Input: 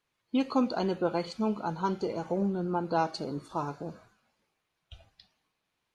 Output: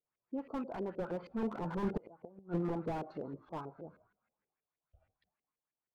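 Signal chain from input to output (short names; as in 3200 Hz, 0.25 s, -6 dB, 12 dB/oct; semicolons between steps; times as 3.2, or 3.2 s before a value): Doppler pass-by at 2.14, 11 m/s, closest 1.9 m; LFO low-pass saw up 6.3 Hz 390–2300 Hz; flipped gate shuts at -23 dBFS, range -34 dB; slew limiter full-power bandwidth 4.9 Hz; gain +6.5 dB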